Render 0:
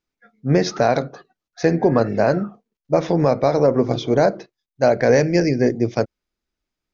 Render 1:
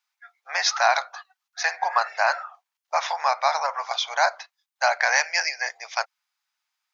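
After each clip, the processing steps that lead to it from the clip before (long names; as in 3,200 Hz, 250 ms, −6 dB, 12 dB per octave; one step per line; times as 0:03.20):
Butterworth high-pass 790 Hz 48 dB per octave
level +6 dB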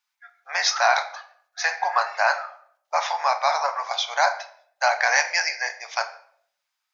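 rectangular room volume 96 cubic metres, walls mixed, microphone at 0.36 metres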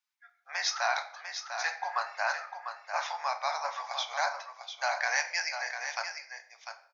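low-shelf EQ 480 Hz −9 dB
single-tap delay 698 ms −8 dB
level −8.5 dB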